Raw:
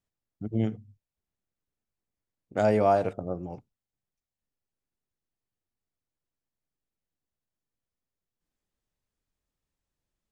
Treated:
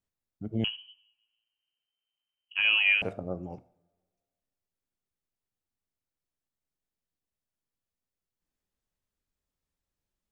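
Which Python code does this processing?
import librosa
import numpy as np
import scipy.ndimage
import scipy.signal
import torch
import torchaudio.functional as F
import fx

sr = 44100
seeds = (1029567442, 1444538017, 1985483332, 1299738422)

y = fx.rev_double_slope(x, sr, seeds[0], early_s=0.52, late_s=1.8, knee_db=-22, drr_db=14.5)
y = fx.freq_invert(y, sr, carrier_hz=3100, at=(0.64, 3.02))
y = y * 10.0 ** (-2.5 / 20.0)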